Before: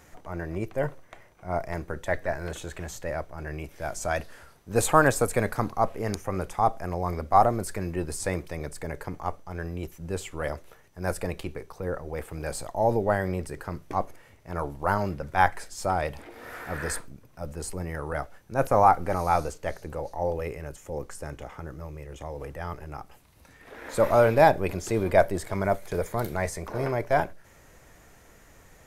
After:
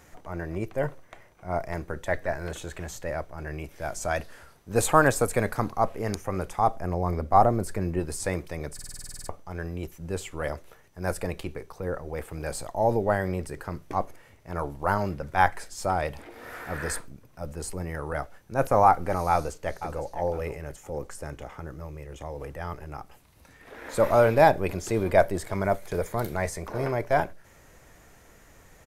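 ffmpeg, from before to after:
-filter_complex "[0:a]asettb=1/sr,asplit=3[s0][s1][s2];[s0]atrim=end=6.764[s3];[s1]atrim=start=6.76:end=8,asetpts=PTS-STARTPTS,afade=t=in:d=0.004:c=qsin,afade=t=out:st=1.236:d=0.004:c=qsin,tiltshelf=f=840:g=3.5[s4];[s2]atrim=start=7.996[s5];[s3][s4]acrossfade=d=0.004:c1=hsin:c2=qsin[s6];[s6][s5]acrossfade=d=0.004:c1=qsin:c2=hsin,asplit=2[s7][s8];[s8]afade=t=in:st=19.3:d=0.01,afade=t=out:st=20.05:d=0.01,aecho=0:1:510|1020|1530:0.251189|0.0753566|0.022607[s9];[s7][s9]amix=inputs=2:normalize=0,asplit=12[s10][s11][s12][s13][s14][s15][s16][s17][s18][s19][s20][s21];[s10]atrim=end=8.792[s22];[s11]atrim=start=8.738:end=8.792[s23];[s12]atrim=start=8.738:end=8.792[s24];[s13]atrim=start=8.738:end=8.792[s25];[s14]atrim=start=8.738:end=8.792[s26];[s15]atrim=start=8.738:end=8.792[s27];[s16]atrim=start=8.738:end=8.792[s28];[s17]atrim=start=8.738:end=8.792[s29];[s18]atrim=start=8.738:end=8.792[s30];[s19]atrim=start=8.738:end=8.792[s31];[s20]atrim=start=8.738:end=8.792[s32];[s21]atrim=start=9.288[s33];[s22][s23]acrossfade=d=0.004:c1=hsin:c2=hsin[s34];[s34][s24]acrossfade=d=0.004:c1=hsin:c2=hsin[s35];[s35][s25]acrossfade=d=0.004:c1=hsin:c2=hsin[s36];[s36][s26]acrossfade=d=0.004:c1=hsin:c2=hsin[s37];[s37][s27]acrossfade=d=0.004:c1=hsin:c2=hsin[s38];[s38][s28]acrossfade=d=0.004:c1=hsin:c2=hsin[s39];[s39][s29]acrossfade=d=0.004:c1=hsin:c2=hsin[s40];[s40][s30]acrossfade=d=0.004:c1=hsin:c2=hsin[s41];[s41][s31]acrossfade=d=0.004:c1=hsin:c2=hsin[s42];[s42][s32]acrossfade=d=0.004:c1=hsin:c2=hsin[s43];[s43][s33]acrossfade=d=0.004:c1=hsin:c2=hsin"

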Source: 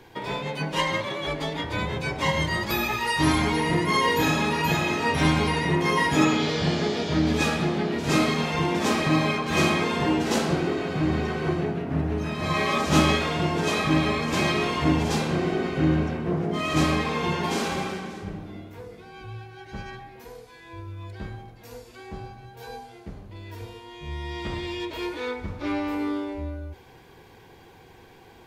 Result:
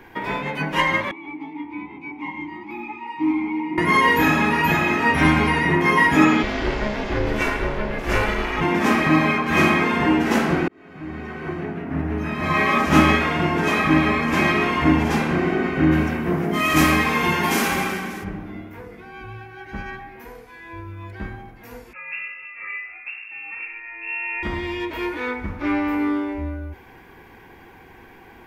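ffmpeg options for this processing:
-filter_complex "[0:a]asettb=1/sr,asplit=3[s0][s1][s2];[s0]atrim=end=1.114[s3];[s1]atrim=start=1.11:end=3.78,asetpts=PTS-STARTPTS,afade=t=in:d=0.004:c=qsin,afade=t=out:st=2.666:d=0.004:c=qsin,asplit=3[s4][s5][s6];[s4]bandpass=f=300:t=q:w=8,volume=1[s7];[s5]bandpass=f=870:t=q:w=8,volume=0.501[s8];[s6]bandpass=f=2240:t=q:w=8,volume=0.355[s9];[s7][s8][s9]amix=inputs=3:normalize=0[s10];[s2]atrim=start=3.776[s11];[s3][s10]acrossfade=d=0.004:c1=hsin:c2=qsin[s12];[s12][s11]acrossfade=d=0.004:c1=qsin:c2=hsin,asplit=3[s13][s14][s15];[s13]afade=t=out:st=6.42:d=0.02[s16];[s14]aeval=exprs='val(0)*sin(2*PI*210*n/s)':c=same,afade=t=in:st=6.42:d=0.02,afade=t=out:st=8.6:d=0.02[s17];[s15]afade=t=in:st=8.6:d=0.02[s18];[s16][s17][s18]amix=inputs=3:normalize=0,asplit=3[s19][s20][s21];[s19]afade=t=out:st=15.91:d=0.02[s22];[s20]aemphasis=mode=production:type=75kf,afade=t=in:st=15.91:d=0.02,afade=t=out:st=18.23:d=0.02[s23];[s21]afade=t=in:st=18.23:d=0.02[s24];[s22][s23][s24]amix=inputs=3:normalize=0,asettb=1/sr,asplit=3[s25][s26][s27];[s25]atrim=end=21.934[s28];[s26]atrim=start=21.93:end=24.43,asetpts=PTS-STARTPTS,afade=t=in:d=0.004:c=qsin,afade=t=out:st=2.496:d=0.004:c=qsin,lowpass=f=2400:t=q:w=0.5098,lowpass=f=2400:t=q:w=0.6013,lowpass=f=2400:t=q:w=0.9,lowpass=f=2400:t=q:w=2.563,afreqshift=-2800[s29];[s27]atrim=start=24.426[s30];[s28][s29]acrossfade=d=0.004:c1=hsin:c2=qsin[s31];[s31][s30]acrossfade=d=0.004:c1=qsin:c2=hsin,asplit=2[s32][s33];[s32]atrim=end=10.68,asetpts=PTS-STARTPTS,afade=t=out:st=10.676:d=0.004:c=hsin[s34];[s33]atrim=start=10.68,asetpts=PTS-STARTPTS,afade=t=in:d=1.87[s35];[s34][s35]concat=n=2:v=0:a=1,equalizer=f=125:t=o:w=1:g=-8,equalizer=f=250:t=o:w=1:g=3,equalizer=f=500:t=o:w=1:g=-6,equalizer=f=2000:t=o:w=1:g=5,equalizer=f=4000:t=o:w=1:g=-10,equalizer=f=8000:t=o:w=1:g=-9,volume=2.11"

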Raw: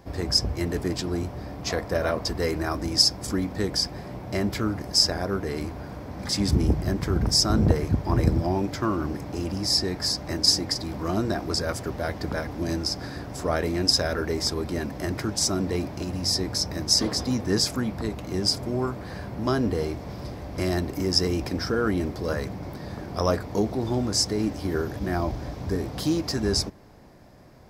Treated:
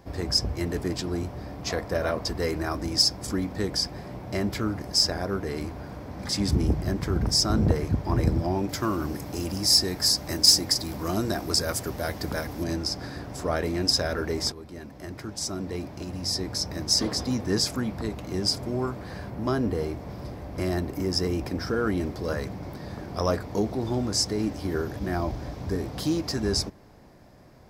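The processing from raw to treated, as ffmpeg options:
-filter_complex "[0:a]asettb=1/sr,asplit=3[s0][s1][s2];[s0]atrim=end=8.694[s3];[s1]atrim=start=8.69:end=12.64,asetpts=PTS-STARTPTS,afade=t=in:d=0.004:c=qsin,afade=t=out:st=3.946:d=0.004:c=qsin,aemphasis=mode=production:type=50kf[s4];[s2]atrim=start=12.636[s5];[s3][s4]acrossfade=d=0.004:c1=hsin:c2=qsin[s6];[s6][s5]acrossfade=d=0.004:c1=qsin:c2=hsin,asettb=1/sr,asplit=3[s7][s8][s9];[s7]atrim=end=19.304[s10];[s8]atrim=start=19.3:end=21.68,asetpts=PTS-STARTPTS,afade=t=in:d=0.004:c=qsin,afade=t=out:st=2.376:d=0.004:c=qsin,equalizer=f=4900:w=0.57:g=-4[s11];[s9]atrim=start=21.676[s12];[s10][s11]acrossfade=d=0.004:c1=hsin:c2=qsin[s13];[s13][s12]acrossfade=d=0.004:c1=qsin:c2=hsin,asplit=2[s14][s15];[s14]atrim=end=14.52,asetpts=PTS-STARTPTS,afade=t=out:st=14.516:d=0.004:c=hsin:silence=0.223872[s16];[s15]atrim=start=14.52,asetpts=PTS-STARTPTS,afade=t=in:d=2.48:silence=0.223872[s17];[s16][s17]concat=n=2:v=0:a=1,acontrast=27,volume=0.473"

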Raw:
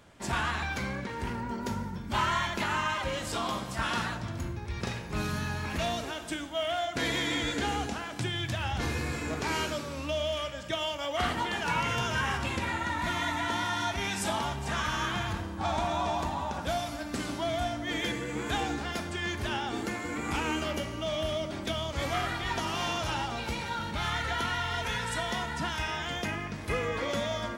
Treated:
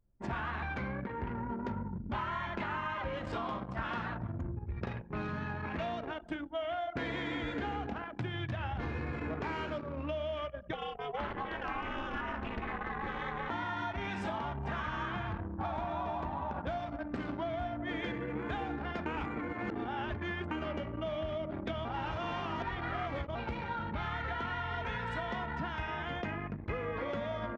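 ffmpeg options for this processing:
-filter_complex "[0:a]asettb=1/sr,asplit=3[s0][s1][s2];[s0]atrim=end=5.024[s3];[s1]atrim=start=5.02:end=6.07,asetpts=PTS-STARTPTS,afade=t=in:d=0.004:c=qsin,afade=t=out:st=1.046:d=0.004:c=qsin,highpass=f=130:p=1[s4];[s2]atrim=start=6.066[s5];[s3][s4]acrossfade=d=0.004:c1=hsin:c2=qsin[s6];[s6][s5]acrossfade=d=0.004:c1=qsin:c2=hsin,asplit=3[s7][s8][s9];[s7]afade=t=out:st=10.72:d=0.02[s10];[s8]aeval=exprs='val(0)*sin(2*PI*140*n/s)':c=same,afade=t=in:st=10.72:d=0.02,afade=t=out:st=13.49:d=0.02[s11];[s9]afade=t=in:st=13.49:d=0.02[s12];[s10][s11][s12]amix=inputs=3:normalize=0,asplit=5[s13][s14][s15][s16][s17];[s13]atrim=end=19.062[s18];[s14]atrim=start=19.058:end=20.512,asetpts=PTS-STARTPTS,areverse[s19];[s15]atrim=start=20.508:end=21.852[s20];[s16]atrim=start=21.848:end=23.352,asetpts=PTS-STARTPTS,areverse[s21];[s17]atrim=start=23.348[s22];[s18][s19]acrossfade=d=0.004:c1=hsin:c2=hsin[s23];[s23][s20]acrossfade=d=0.004:c1=hsin:c2=hsin[s24];[s24][s21]acrossfade=d=0.004:c1=hsin:c2=hsin[s25];[s25][s22]acrossfade=d=0.004:c1=hsin:c2=hsin,anlmdn=2.51,lowpass=2100,acompressor=threshold=0.0224:ratio=6"

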